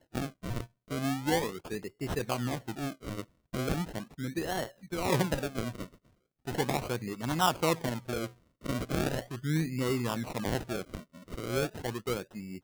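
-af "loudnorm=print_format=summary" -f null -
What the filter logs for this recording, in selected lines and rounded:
Input Integrated:    -33.7 LUFS
Input True Peak:     -12.9 dBTP
Input LRA:             3.0 LU
Input Threshold:     -44.1 LUFS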